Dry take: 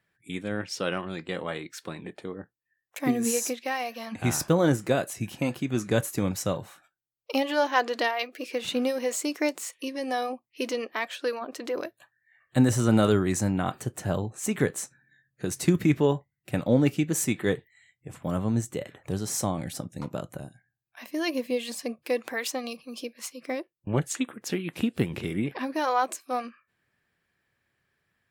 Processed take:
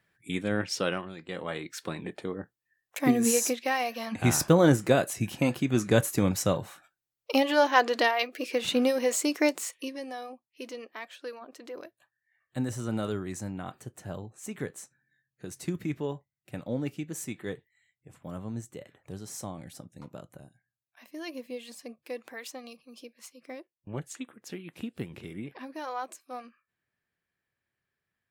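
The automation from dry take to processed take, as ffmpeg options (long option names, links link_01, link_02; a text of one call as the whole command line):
ffmpeg -i in.wav -af "volume=13.5dB,afade=type=out:start_time=0.73:duration=0.42:silence=0.266073,afade=type=in:start_time=1.15:duration=0.69:silence=0.281838,afade=type=out:start_time=9.55:duration=0.58:silence=0.237137" out.wav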